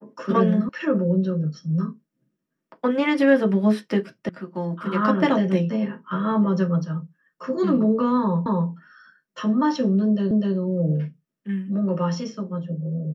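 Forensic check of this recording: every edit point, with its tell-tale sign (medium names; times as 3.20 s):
0.69 s: sound stops dead
4.29 s: sound stops dead
8.46 s: repeat of the last 0.25 s
10.31 s: repeat of the last 0.25 s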